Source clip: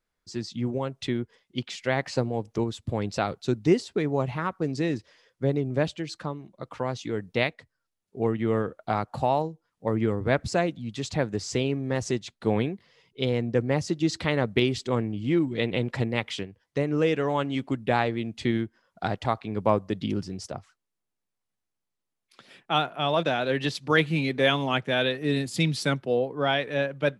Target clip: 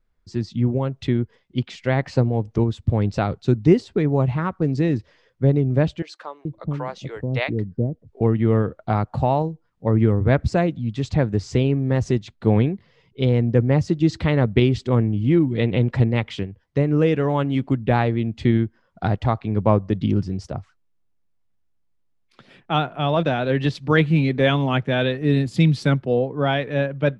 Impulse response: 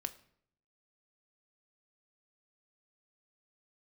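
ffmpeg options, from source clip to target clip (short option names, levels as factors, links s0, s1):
-filter_complex "[0:a]aemphasis=mode=reproduction:type=bsi,asettb=1/sr,asplit=3[s0][s1][s2];[s0]atrim=end=6.024[s3];[s1]atrim=start=6.02:end=8.21,asetpts=PTS-STARTPTS,afade=t=in:d=0.004:c=qsin,afade=t=out:st=2.186:d=0.004:c=qsin,acrossover=split=490[s4][s5];[s4]adelay=430[s6];[s6][s5]amix=inputs=2:normalize=0,atrim=end_sample=96579[s7];[s2]atrim=start=8.206[s8];[s3][s7]acrossfade=d=0.004:c1=hsin:c2=qsin[s9];[s9][s8]acrossfade=d=0.004:c1=qsin:c2=hsin,volume=1.33"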